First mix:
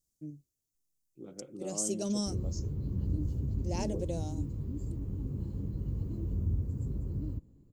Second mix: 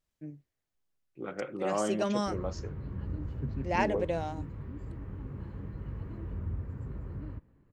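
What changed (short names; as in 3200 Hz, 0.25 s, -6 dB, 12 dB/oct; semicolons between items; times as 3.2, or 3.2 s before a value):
second voice +5.0 dB; background -4.5 dB; master: remove EQ curve 310 Hz 0 dB, 1800 Hz -22 dB, 6500 Hz +10 dB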